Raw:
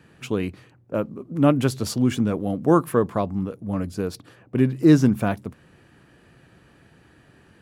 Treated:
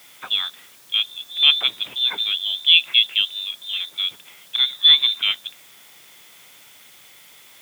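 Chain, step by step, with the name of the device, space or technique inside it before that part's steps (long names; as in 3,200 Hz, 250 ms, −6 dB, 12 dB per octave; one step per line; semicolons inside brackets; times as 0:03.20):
scrambled radio voice (band-pass filter 350–2,800 Hz; voice inversion scrambler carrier 3,800 Hz; white noise bed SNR 27 dB)
high-pass filter 92 Hz 24 dB per octave
level +5.5 dB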